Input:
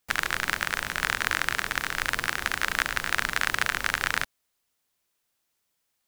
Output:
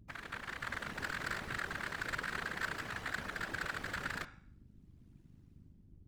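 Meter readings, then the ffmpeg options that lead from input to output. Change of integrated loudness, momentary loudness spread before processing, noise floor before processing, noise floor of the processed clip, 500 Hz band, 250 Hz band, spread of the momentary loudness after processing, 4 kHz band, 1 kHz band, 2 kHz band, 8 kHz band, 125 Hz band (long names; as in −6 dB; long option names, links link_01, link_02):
−13.0 dB, 3 LU, −77 dBFS, −62 dBFS, −7.5 dB, −5.0 dB, 5 LU, −15.5 dB, −12.0 dB, −12.5 dB, −18.0 dB, −5.5 dB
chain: -af "highpass=41,aemphasis=mode=reproduction:type=75kf,bandreject=frequency=278.6:width_type=h:width=4,bandreject=frequency=557.2:width_type=h:width=4,bandreject=frequency=835.8:width_type=h:width=4,bandreject=frequency=1114.4:width_type=h:width=4,bandreject=frequency=1393:width_type=h:width=4,bandreject=frequency=1671.6:width_type=h:width=4,bandreject=frequency=1950.2:width_type=h:width=4,bandreject=frequency=2228.8:width_type=h:width=4,bandreject=frequency=2507.4:width_type=h:width=4,bandreject=frequency=2786:width_type=h:width=4,bandreject=frequency=3064.6:width_type=h:width=4,bandreject=frequency=3343.2:width_type=h:width=4,bandreject=frequency=3621.8:width_type=h:width=4,bandreject=frequency=3900.4:width_type=h:width=4,bandreject=frequency=4179:width_type=h:width=4,bandreject=frequency=4457.6:width_type=h:width=4,bandreject=frequency=4736.2:width_type=h:width=4,bandreject=frequency=5014.8:width_type=h:width=4,bandreject=frequency=5293.4:width_type=h:width=4,bandreject=frequency=5572:width_type=h:width=4,bandreject=frequency=5850.6:width_type=h:width=4,bandreject=frequency=6129.2:width_type=h:width=4,bandreject=frequency=6407.8:width_type=h:width=4,bandreject=frequency=6686.4:width_type=h:width=4,bandreject=frequency=6965:width_type=h:width=4,bandreject=frequency=7243.6:width_type=h:width=4,bandreject=frequency=7522.2:width_type=h:width=4,bandreject=frequency=7800.8:width_type=h:width=4,bandreject=frequency=8079.4:width_type=h:width=4,bandreject=frequency=8358:width_type=h:width=4,bandreject=frequency=8636.6:width_type=h:width=4,bandreject=frequency=8915.2:width_type=h:width=4,bandreject=frequency=9193.8:width_type=h:width=4,dynaudnorm=framelen=120:gausssize=11:maxgain=16dB,asoftclip=type=tanh:threshold=-13.5dB,aeval=exprs='val(0)+0.00631*(sin(2*PI*50*n/s)+sin(2*PI*2*50*n/s)/2+sin(2*PI*3*50*n/s)/3+sin(2*PI*4*50*n/s)/4+sin(2*PI*5*50*n/s)/5)':channel_layout=same,aeval=exprs='val(0)*sin(2*PI*36*n/s)':channel_layout=same,afftfilt=real='hypot(re,im)*cos(2*PI*random(0))':imag='hypot(re,im)*sin(2*PI*random(1))':win_size=512:overlap=0.75,volume=-3.5dB"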